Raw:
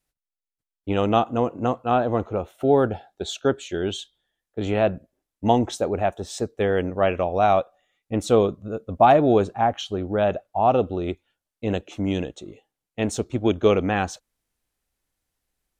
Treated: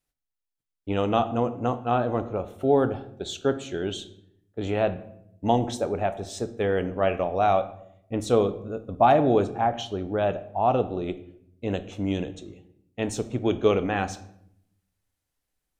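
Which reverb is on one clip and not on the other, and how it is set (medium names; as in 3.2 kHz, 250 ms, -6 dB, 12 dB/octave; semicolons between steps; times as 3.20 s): simulated room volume 150 m³, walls mixed, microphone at 0.3 m; trim -3.5 dB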